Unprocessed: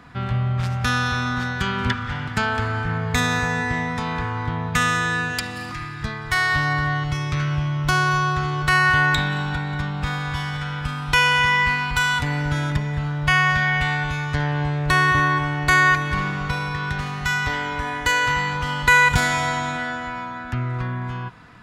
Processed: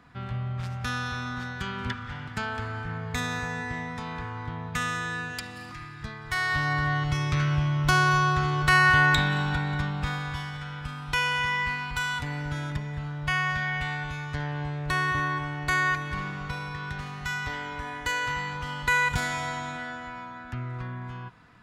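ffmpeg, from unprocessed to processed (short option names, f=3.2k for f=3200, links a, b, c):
-af "volume=-2dB,afade=t=in:st=6.19:d=1.02:silence=0.421697,afade=t=out:st=9.68:d=0.85:silence=0.446684"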